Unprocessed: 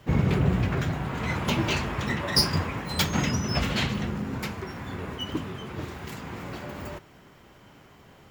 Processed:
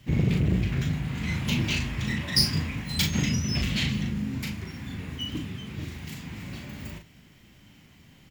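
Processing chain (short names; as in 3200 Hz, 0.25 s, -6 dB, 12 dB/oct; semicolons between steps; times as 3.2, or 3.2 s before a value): band shelf 740 Hz -12 dB 2.4 oct; doubler 38 ms -5 dB; core saturation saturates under 290 Hz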